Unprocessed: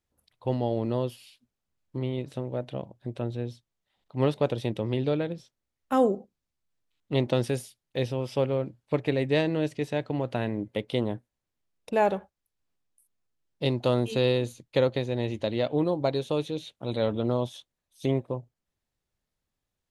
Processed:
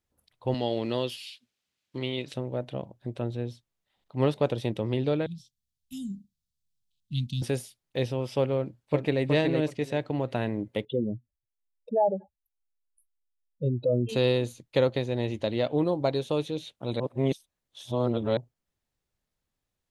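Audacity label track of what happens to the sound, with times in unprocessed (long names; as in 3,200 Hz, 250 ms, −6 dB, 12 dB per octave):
0.540000	2.340000	meter weighting curve D
5.260000	7.420000	inverse Chebyshev band-stop filter 420–1,600 Hz, stop band 50 dB
8.560000	9.230000	delay throw 370 ms, feedback 20%, level −4 dB
10.850000	14.090000	expanding power law on the bin magnitudes exponent 3.1
17.000000	18.370000	reverse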